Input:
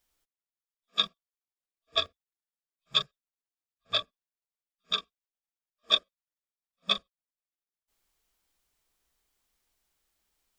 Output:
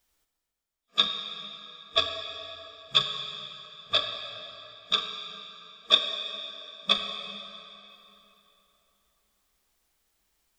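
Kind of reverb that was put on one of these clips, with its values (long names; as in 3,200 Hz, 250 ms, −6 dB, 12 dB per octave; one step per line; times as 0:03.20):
dense smooth reverb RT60 3.3 s, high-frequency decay 0.8×, DRR 4 dB
level +3 dB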